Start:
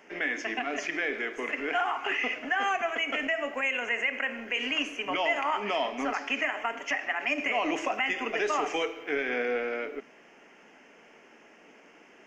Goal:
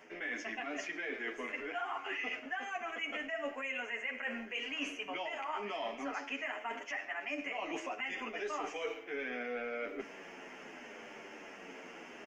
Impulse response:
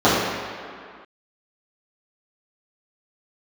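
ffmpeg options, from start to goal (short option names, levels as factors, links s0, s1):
-filter_complex "[0:a]areverse,acompressor=threshold=0.00631:ratio=5,areverse,asplit=2[s0][s1];[s1]adelay=9.2,afreqshift=-0.75[s2];[s0][s2]amix=inputs=2:normalize=1,volume=2.66"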